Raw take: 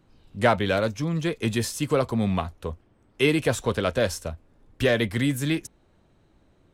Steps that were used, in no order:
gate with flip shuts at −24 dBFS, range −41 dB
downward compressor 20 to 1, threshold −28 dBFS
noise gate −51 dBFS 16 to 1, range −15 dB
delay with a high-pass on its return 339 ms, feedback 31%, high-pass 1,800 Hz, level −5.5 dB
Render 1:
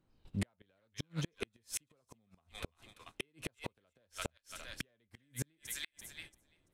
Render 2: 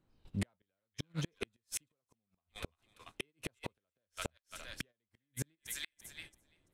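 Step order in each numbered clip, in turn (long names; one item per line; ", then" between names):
delay with a high-pass on its return, then noise gate, then downward compressor, then gate with flip
delay with a high-pass on its return, then downward compressor, then gate with flip, then noise gate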